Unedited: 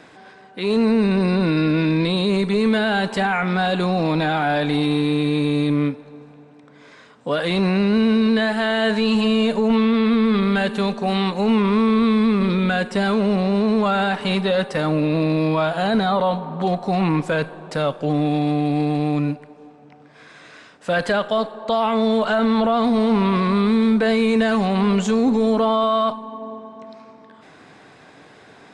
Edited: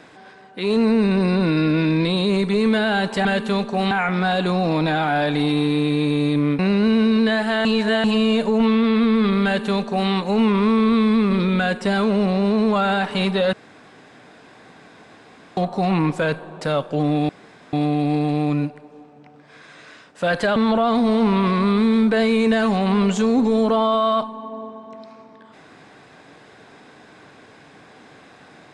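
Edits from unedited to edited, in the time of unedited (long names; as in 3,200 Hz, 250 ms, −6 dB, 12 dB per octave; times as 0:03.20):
0:05.93–0:07.69: remove
0:08.75–0:09.14: reverse
0:10.54–0:11.20: duplicate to 0:03.25
0:14.63–0:16.67: fill with room tone
0:18.39: splice in room tone 0.44 s
0:21.22–0:22.45: remove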